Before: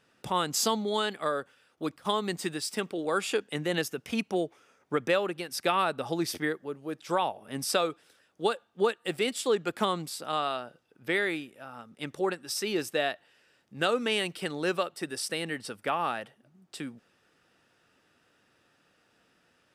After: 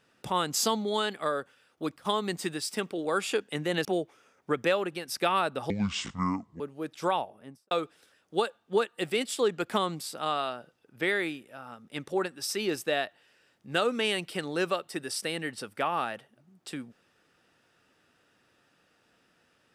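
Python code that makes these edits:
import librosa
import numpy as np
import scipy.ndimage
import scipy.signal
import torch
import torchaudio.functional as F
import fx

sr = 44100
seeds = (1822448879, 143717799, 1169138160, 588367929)

y = fx.studio_fade_out(x, sr, start_s=7.17, length_s=0.61)
y = fx.edit(y, sr, fx.cut(start_s=3.85, length_s=0.43),
    fx.speed_span(start_s=6.13, length_s=0.54, speed=0.6), tone=tone)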